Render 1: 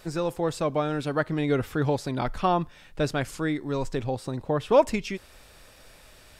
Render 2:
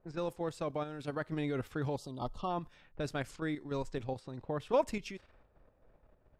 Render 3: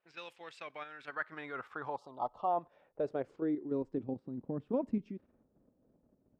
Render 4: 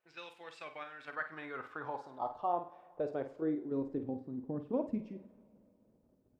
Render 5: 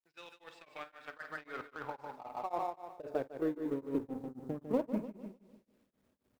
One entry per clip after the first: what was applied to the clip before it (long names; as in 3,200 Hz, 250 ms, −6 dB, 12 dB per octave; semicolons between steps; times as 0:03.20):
low-pass that shuts in the quiet parts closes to 650 Hz, open at −24 dBFS; output level in coarse steps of 9 dB; gain on a spectral selection 0:01.97–0:02.50, 1,300–2,700 Hz −21 dB; level −7 dB
band-pass filter sweep 2,700 Hz → 240 Hz, 0:00.36–0:04.23; level +7 dB
flutter between parallel walls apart 8.7 metres, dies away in 0.31 s; convolution reverb, pre-delay 3 ms, DRR 10.5 dB; level −1.5 dB
mu-law and A-law mismatch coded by A; repeating echo 150 ms, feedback 40%, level −6.5 dB; tremolo along a rectified sine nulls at 3.8 Hz; level +4 dB